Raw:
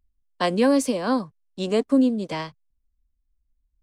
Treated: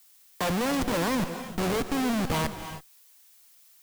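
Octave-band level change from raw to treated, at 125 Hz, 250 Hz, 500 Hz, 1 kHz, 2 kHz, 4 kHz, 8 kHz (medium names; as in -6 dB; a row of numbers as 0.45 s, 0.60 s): +3.0 dB, -6.5 dB, -6.5 dB, -1.0 dB, +1.0 dB, -0.5 dB, +0.5 dB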